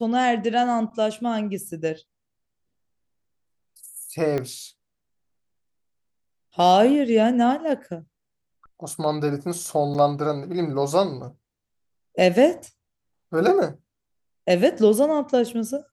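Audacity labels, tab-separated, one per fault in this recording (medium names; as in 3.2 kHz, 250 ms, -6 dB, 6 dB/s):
4.380000	4.380000	pop -15 dBFS
9.940000	9.950000	dropout 7 ms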